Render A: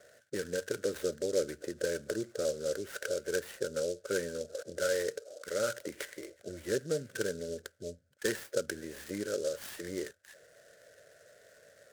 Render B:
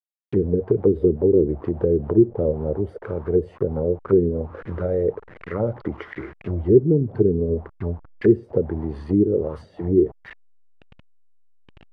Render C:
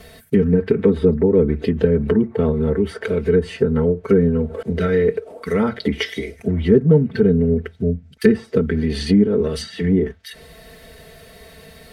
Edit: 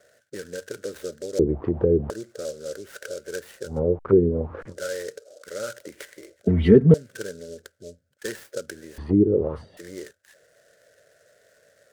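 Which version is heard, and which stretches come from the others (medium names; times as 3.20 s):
A
1.39–2.10 s: from B
3.72–4.67 s: from B, crossfade 0.16 s
6.47–6.94 s: from C
8.98–9.77 s: from B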